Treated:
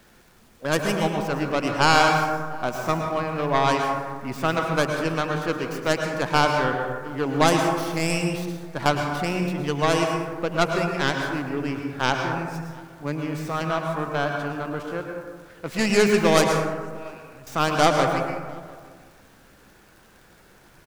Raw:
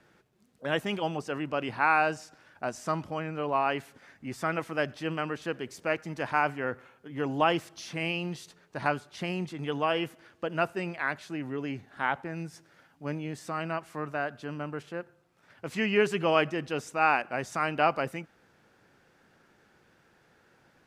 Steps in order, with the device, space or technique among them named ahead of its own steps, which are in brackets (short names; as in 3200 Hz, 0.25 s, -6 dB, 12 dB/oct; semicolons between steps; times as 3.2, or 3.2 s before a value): 16.47–17.47 passive tone stack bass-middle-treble 10-0-1; record under a worn stylus (tracing distortion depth 0.31 ms; crackle; pink noise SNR 32 dB); outdoor echo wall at 120 m, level -24 dB; plate-style reverb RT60 1.5 s, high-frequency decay 0.35×, pre-delay 95 ms, DRR 2.5 dB; gain +5 dB